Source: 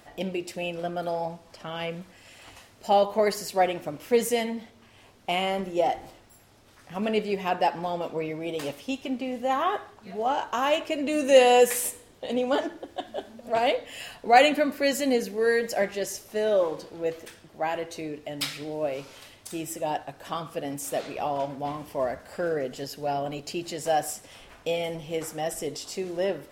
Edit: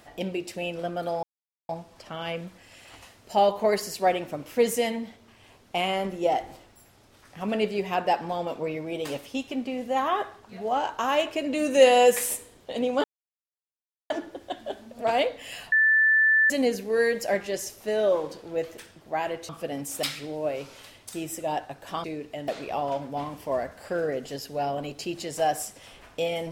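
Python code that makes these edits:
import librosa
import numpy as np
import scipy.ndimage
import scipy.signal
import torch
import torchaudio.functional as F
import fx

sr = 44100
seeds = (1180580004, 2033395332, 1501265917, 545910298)

y = fx.edit(x, sr, fx.insert_silence(at_s=1.23, length_s=0.46),
    fx.insert_silence(at_s=12.58, length_s=1.06),
    fx.bleep(start_s=14.2, length_s=0.78, hz=1760.0, db=-16.5),
    fx.swap(start_s=17.97, length_s=0.44, other_s=20.42, other_length_s=0.54), tone=tone)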